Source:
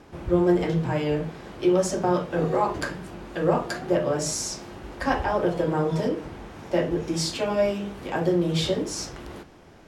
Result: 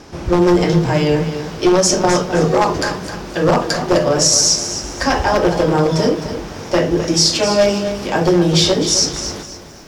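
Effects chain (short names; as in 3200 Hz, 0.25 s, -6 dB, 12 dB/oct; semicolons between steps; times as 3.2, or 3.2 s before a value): one-sided fold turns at -16.5 dBFS; bell 5500 Hz +12 dB 0.74 oct; maximiser +11.5 dB; lo-fi delay 0.259 s, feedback 35%, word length 7-bit, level -10.5 dB; gain -2 dB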